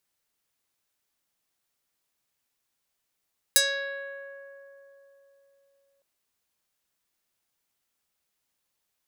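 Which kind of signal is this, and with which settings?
plucked string C#5, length 2.46 s, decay 3.83 s, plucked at 0.48, medium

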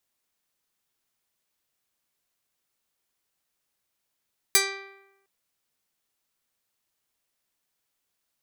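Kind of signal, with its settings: plucked string G4, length 0.71 s, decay 0.96 s, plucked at 0.28, medium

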